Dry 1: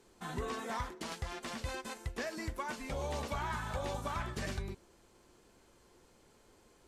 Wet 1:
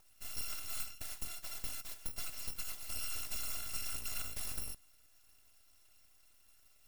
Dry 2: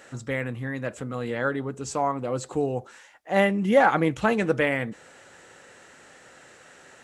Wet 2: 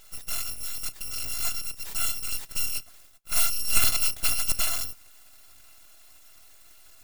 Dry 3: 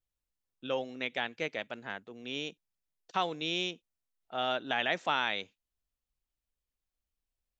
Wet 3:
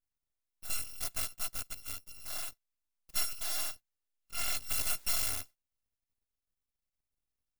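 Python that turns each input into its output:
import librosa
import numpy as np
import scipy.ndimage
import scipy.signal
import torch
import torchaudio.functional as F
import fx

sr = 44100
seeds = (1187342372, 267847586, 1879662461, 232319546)

y = fx.bit_reversed(x, sr, seeds[0], block=256)
y = np.abs(y)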